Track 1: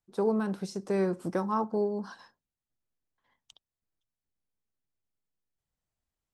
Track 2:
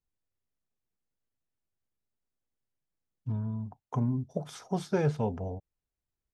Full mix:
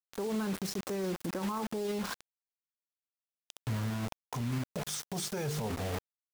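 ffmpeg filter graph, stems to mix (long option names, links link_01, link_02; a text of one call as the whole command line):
ffmpeg -i stem1.wav -i stem2.wav -filter_complex "[0:a]adynamicequalizer=threshold=0.00251:dfrequency=720:dqfactor=6.4:tfrequency=720:tqfactor=6.4:attack=5:release=100:ratio=0.375:range=3:mode=cutabove:tftype=bell,acompressor=threshold=-29dB:ratio=6,volume=0dB[link_01];[1:a]equalizer=frequency=8500:width=0.38:gain=15,bandreject=frequency=50.68:width_type=h:width=4,bandreject=frequency=101.36:width_type=h:width=4,bandreject=frequency=152.04:width_type=h:width=4,bandreject=frequency=202.72:width_type=h:width=4,bandreject=frequency=253.4:width_type=h:width=4,bandreject=frequency=304.08:width_type=h:width=4,bandreject=frequency=354.76:width_type=h:width=4,bandreject=frequency=405.44:width_type=h:width=4,bandreject=frequency=456.12:width_type=h:width=4,adelay=400,volume=-4.5dB[link_02];[link_01][link_02]amix=inputs=2:normalize=0,acontrast=78,acrusher=bits=5:mix=0:aa=0.000001,alimiter=level_in=3.5dB:limit=-24dB:level=0:latency=1:release=32,volume=-3.5dB" out.wav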